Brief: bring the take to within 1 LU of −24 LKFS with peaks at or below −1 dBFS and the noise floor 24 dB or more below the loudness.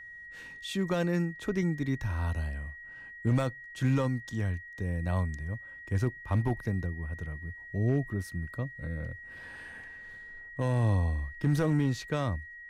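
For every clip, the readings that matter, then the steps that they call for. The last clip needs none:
share of clipped samples 0.5%; peaks flattened at −20.0 dBFS; interfering tone 1,900 Hz; level of the tone −44 dBFS; integrated loudness −32.0 LKFS; sample peak −20.0 dBFS; target loudness −24.0 LKFS
→ clipped peaks rebuilt −20 dBFS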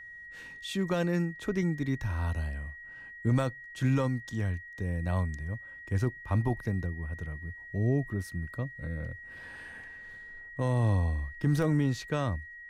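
share of clipped samples 0.0%; interfering tone 1,900 Hz; level of the tone −44 dBFS
→ notch filter 1,900 Hz, Q 30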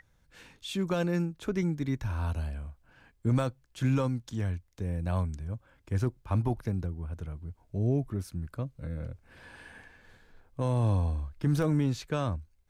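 interfering tone none found; integrated loudness −31.5 LKFS; sample peak −16.5 dBFS; target loudness −24.0 LKFS
→ level +7.5 dB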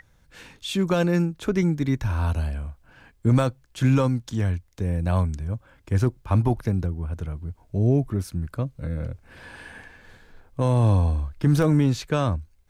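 integrated loudness −24.0 LKFS; sample peak −9.0 dBFS; background noise floor −59 dBFS

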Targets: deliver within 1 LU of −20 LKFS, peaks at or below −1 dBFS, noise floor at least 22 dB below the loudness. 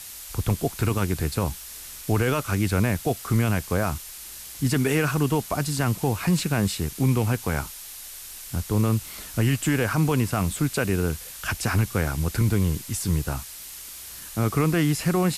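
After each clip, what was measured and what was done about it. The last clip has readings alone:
background noise floor −40 dBFS; target noise floor −47 dBFS; integrated loudness −25.0 LKFS; sample peak −11.0 dBFS; target loudness −20.0 LKFS
→ broadband denoise 7 dB, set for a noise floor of −40 dBFS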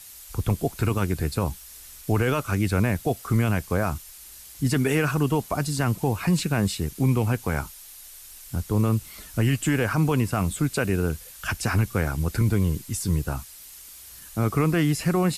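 background noise floor −45 dBFS; target noise floor −47 dBFS
→ broadband denoise 6 dB, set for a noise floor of −45 dBFS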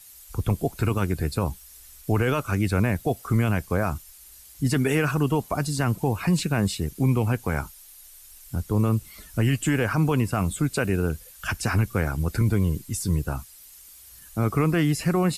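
background noise floor −48 dBFS; integrated loudness −25.0 LKFS; sample peak −11.5 dBFS; target loudness −20.0 LKFS
→ level +5 dB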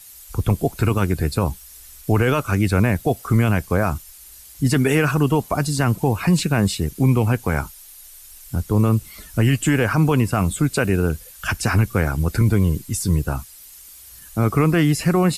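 integrated loudness −20.0 LKFS; sample peak −6.5 dBFS; background noise floor −43 dBFS

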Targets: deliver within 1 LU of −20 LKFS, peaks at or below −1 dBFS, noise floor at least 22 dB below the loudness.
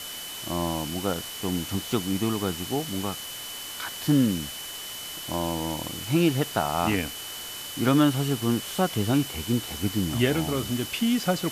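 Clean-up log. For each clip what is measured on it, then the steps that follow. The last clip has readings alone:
interfering tone 3,000 Hz; level of the tone −39 dBFS; background noise floor −37 dBFS; target noise floor −49 dBFS; integrated loudness −27.0 LKFS; sample peak −9.0 dBFS; target loudness −20.0 LKFS
→ notch filter 3,000 Hz, Q 30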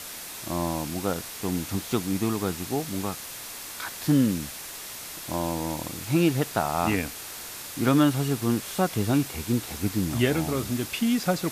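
interfering tone none found; background noise floor −39 dBFS; target noise floor −49 dBFS
→ broadband denoise 10 dB, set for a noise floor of −39 dBFS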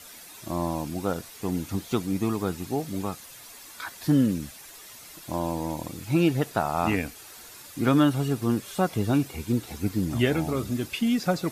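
background noise floor −46 dBFS; target noise floor −49 dBFS
→ broadband denoise 6 dB, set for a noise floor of −46 dBFS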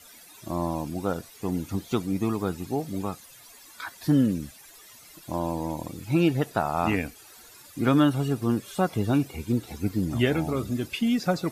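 background noise floor −50 dBFS; integrated loudness −27.0 LKFS; sample peak −9.5 dBFS; target loudness −20.0 LKFS
→ level +7 dB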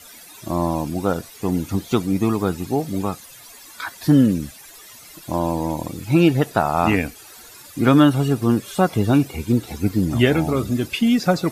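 integrated loudness −20.0 LKFS; sample peak −2.5 dBFS; background noise floor −43 dBFS

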